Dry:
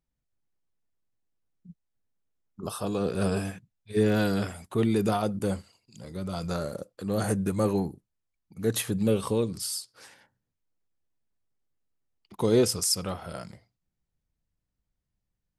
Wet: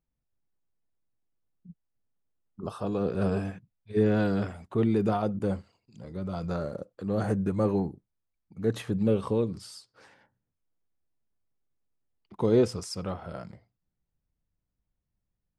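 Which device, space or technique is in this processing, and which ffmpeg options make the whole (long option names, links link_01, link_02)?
through cloth: -af "lowpass=8100,highshelf=frequency=2900:gain=-14"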